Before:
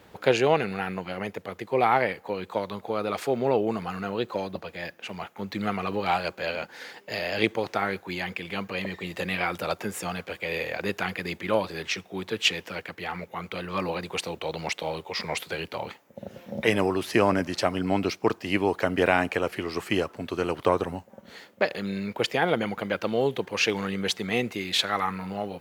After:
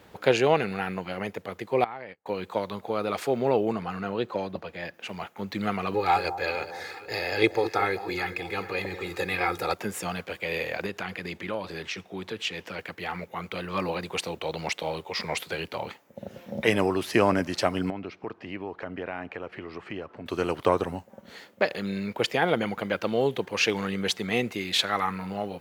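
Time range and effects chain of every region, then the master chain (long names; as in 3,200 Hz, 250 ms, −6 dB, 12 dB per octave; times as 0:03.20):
0:01.84–0:02.26: high-frequency loss of the air 64 metres + downward compressor 2.5 to 1, threshold −43 dBFS + noise gate −45 dBFS, range −32 dB
0:03.72–0:04.94: high-pass filter 55 Hz + high-shelf EQ 5,100 Hz −8.5 dB
0:05.94–0:09.74: notch filter 3,000 Hz, Q 5.2 + comb filter 2.4 ms, depth 66% + delay that swaps between a low-pass and a high-pass 211 ms, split 910 Hz, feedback 66%, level −11 dB
0:10.86–0:12.79: high-shelf EQ 9,600 Hz −7 dB + downward compressor 2 to 1, threshold −32 dBFS
0:17.90–0:20.26: low-pass filter 2,600 Hz + downward compressor 2 to 1, threshold −40 dBFS
whole clip: no processing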